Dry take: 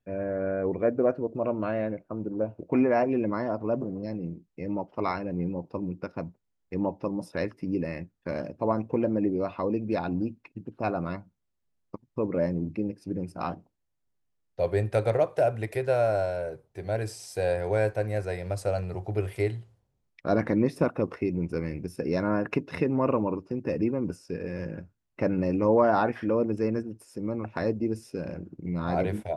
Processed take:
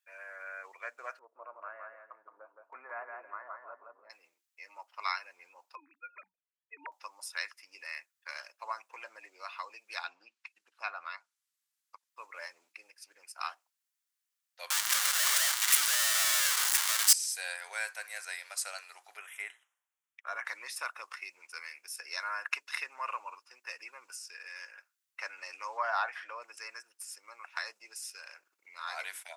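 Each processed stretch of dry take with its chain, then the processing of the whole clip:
1.19–4.10 s: low-pass 1.3 kHz 24 dB/octave + dynamic bell 940 Hz, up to -5 dB, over -44 dBFS, Q 2.5 + feedback delay 169 ms, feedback 21%, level -4 dB
5.75–6.92 s: formants replaced by sine waves + resonant low shelf 390 Hz +11 dB, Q 1.5
10.01–12.09 s: low-pass that closes with the level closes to 3 kHz, closed at -25 dBFS + tone controls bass +5 dB, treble +2 dB
14.70–17.13 s: one-bit comparator + band-stop 2.5 kHz, Q 14
19.17–20.45 s: Butterworth band-stop 4.5 kHz, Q 1.9 + treble shelf 3.5 kHz -9 dB
25.77–26.42 s: low-pass 2.7 kHz 6 dB/octave + peaking EQ 660 Hz +5.5 dB 0.54 oct
whole clip: dynamic bell 7.5 kHz, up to +4 dB, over -59 dBFS, Q 0.97; high-pass 1.2 kHz 24 dB/octave; treble shelf 4.6 kHz +8.5 dB; trim +1 dB

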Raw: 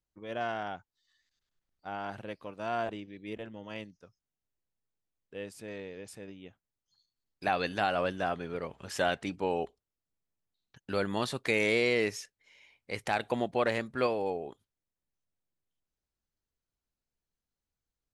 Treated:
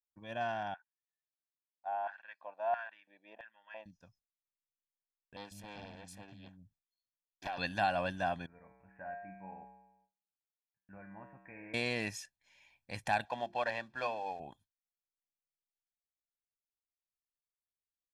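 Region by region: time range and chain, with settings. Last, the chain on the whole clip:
0.74–3.86 s: high-pass 160 Hz 6 dB/octave + tape spacing loss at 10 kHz 35 dB + LFO high-pass square 1.5 Hz 680–1600 Hz
5.36–7.58 s: compression, threshold -32 dBFS + bands offset in time highs, lows 150 ms, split 250 Hz + loudspeaker Doppler distortion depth 0.58 ms
8.46–11.74 s: steep low-pass 2.3 kHz 72 dB/octave + feedback comb 64 Hz, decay 1.1 s, harmonics odd, mix 90%
13.25–14.40 s: CVSD coder 64 kbps + three-band isolator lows -12 dB, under 420 Hz, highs -23 dB, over 5.1 kHz + hum notches 50/100/150/200/250/300/350/400 Hz
whole clip: gate with hold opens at -60 dBFS; comb 1.2 ms, depth 75%; trim -5 dB

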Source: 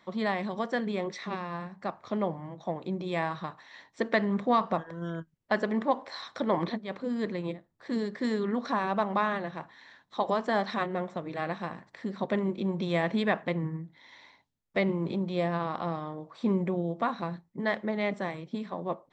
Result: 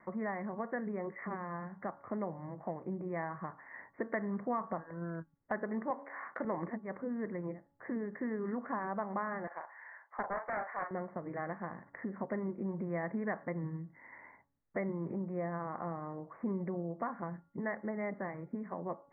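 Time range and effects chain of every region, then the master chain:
5.90–6.45 s: block-companded coder 5-bit + high-pass 190 Hz + treble shelf 2.3 kHz +11 dB
9.47–10.91 s: high-pass 580 Hz 24 dB/octave + doubling 38 ms -5.5 dB + loudspeaker Doppler distortion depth 0.3 ms
whole clip: steep low-pass 2.1 kHz 96 dB/octave; de-hum 281.3 Hz, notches 5; compression 2:1, threshold -44 dBFS; trim +2 dB

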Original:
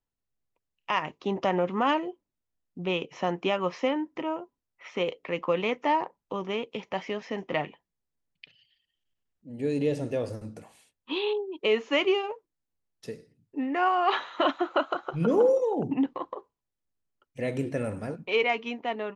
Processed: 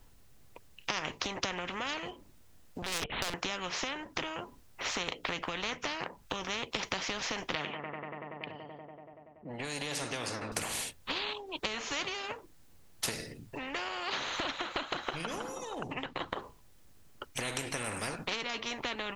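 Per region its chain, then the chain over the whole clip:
2.82–3.34 s: LPC vocoder at 8 kHz pitch kept + hard clipper -31.5 dBFS
7.55–10.52 s: level-controlled noise filter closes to 760 Hz, open at -24.5 dBFS + high-pass 150 Hz + feedback echo behind a low-pass 95 ms, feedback 80%, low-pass 1.2 kHz, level -21 dB
whole clip: bass shelf 85 Hz +9 dB; compression 6:1, threshold -37 dBFS; spectrum-flattening compressor 4:1; trim +8.5 dB

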